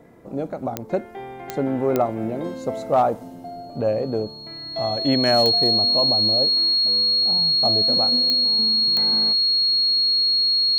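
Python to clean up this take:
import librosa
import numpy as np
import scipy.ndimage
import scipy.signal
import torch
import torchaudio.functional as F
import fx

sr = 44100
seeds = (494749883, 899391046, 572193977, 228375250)

y = fx.fix_declip(x, sr, threshold_db=-10.0)
y = fx.fix_declick_ar(y, sr, threshold=10.0)
y = fx.notch(y, sr, hz=4300.0, q=30.0)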